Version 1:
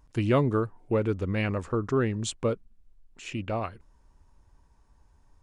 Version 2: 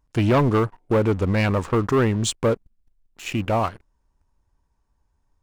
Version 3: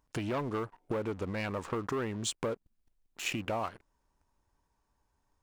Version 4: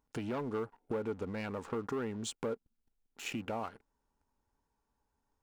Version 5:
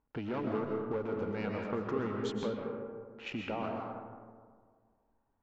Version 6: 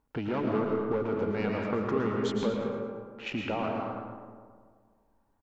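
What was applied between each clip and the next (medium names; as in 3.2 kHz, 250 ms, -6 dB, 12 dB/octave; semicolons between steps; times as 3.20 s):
dynamic bell 920 Hz, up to +6 dB, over -47 dBFS, Q 2.3; waveshaping leveller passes 3; trim -2.5 dB
compression 12:1, threshold -29 dBFS, peak gain reduction 14 dB; bass shelf 150 Hz -11 dB
small resonant body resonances 240/440/820/1400 Hz, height 7 dB, ringing for 35 ms; trim -6.5 dB
boxcar filter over 5 samples; level-controlled noise filter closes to 2 kHz, open at -34 dBFS; algorithmic reverb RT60 1.8 s, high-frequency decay 0.35×, pre-delay 90 ms, DRR 0.5 dB
feedback delay 111 ms, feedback 41%, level -9 dB; trim +5 dB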